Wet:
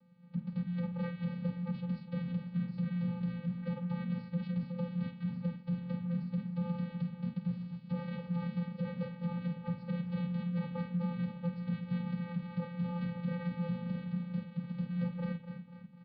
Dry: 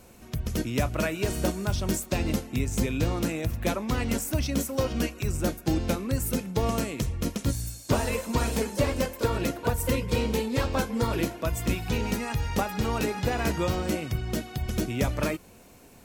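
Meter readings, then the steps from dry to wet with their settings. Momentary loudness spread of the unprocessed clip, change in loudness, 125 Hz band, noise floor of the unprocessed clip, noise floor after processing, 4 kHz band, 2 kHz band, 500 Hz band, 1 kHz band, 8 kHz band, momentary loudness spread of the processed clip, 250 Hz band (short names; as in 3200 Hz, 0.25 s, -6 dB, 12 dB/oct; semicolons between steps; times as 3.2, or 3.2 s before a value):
3 LU, -8.5 dB, -6.0 dB, -52 dBFS, -52 dBFS, -21.5 dB, -17.5 dB, -17.0 dB, -17.0 dB, under -40 dB, 3 LU, -5.5 dB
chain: high shelf 2100 Hz -11 dB; on a send: frequency-shifting echo 0.247 s, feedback 60%, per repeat -52 Hz, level -10 dB; on the sum: vocoder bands 8, square 173 Hz; in parallel at -10 dB: crossover distortion -45 dBFS; on the sum: downsampling 11025 Hz; flutter echo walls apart 8.4 m, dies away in 0.27 s; frequency shift -350 Hz; low shelf 380 Hz -7 dB; limiter -26.5 dBFS, peak gain reduction 8.5 dB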